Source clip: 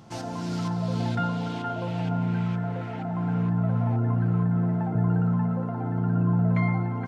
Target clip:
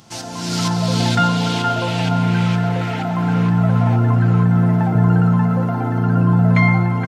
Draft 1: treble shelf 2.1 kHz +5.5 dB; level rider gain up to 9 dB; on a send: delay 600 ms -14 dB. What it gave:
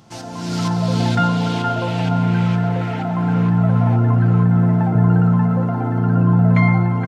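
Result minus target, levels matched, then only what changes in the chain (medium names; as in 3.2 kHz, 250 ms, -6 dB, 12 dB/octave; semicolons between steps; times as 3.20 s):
4 kHz band -6.0 dB
change: treble shelf 2.1 kHz +14 dB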